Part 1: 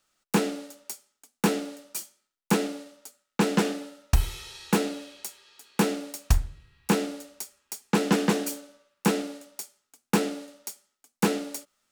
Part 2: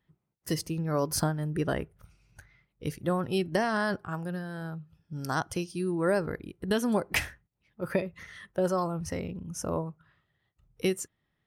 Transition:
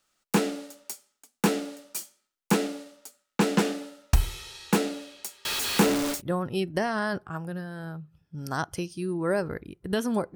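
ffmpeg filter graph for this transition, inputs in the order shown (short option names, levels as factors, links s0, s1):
-filter_complex "[0:a]asettb=1/sr,asplit=3[s0][s1][s2];[s0]atrim=end=5.454[s3];[s1]atrim=start=5.45:end=6.22,asetpts=PTS-STARTPTS,afade=t=in:d=0.004:c=qsin,afade=t=out:st=0.766:d=0.004:c=qsin,aeval=exprs='val(0)+0.5*0.0668*sgn(val(0))':c=same[s4];[s2]atrim=start=6.216[s5];[s3][s4]acrossfade=d=0.004:c1=hsin:c2=qsin[s6];[s6][s5]acrossfade=d=0.004:c1=qsin:c2=hsin,apad=whole_dur=10.35,atrim=end=10.35,atrim=end=6.22,asetpts=PTS-STARTPTS[s7];[1:a]atrim=start=2.88:end=7.13,asetpts=PTS-STARTPTS[s8];[s7][s8]acrossfade=d=0.12:c1=tri:c2=tri"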